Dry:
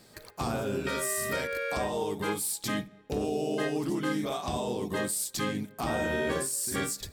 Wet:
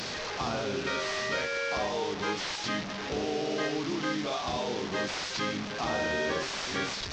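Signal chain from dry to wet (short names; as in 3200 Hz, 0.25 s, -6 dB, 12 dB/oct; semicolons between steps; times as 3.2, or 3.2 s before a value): delta modulation 32 kbps, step -31.5 dBFS; low shelf 350 Hz -7 dB; in parallel at -2 dB: level quantiser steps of 22 dB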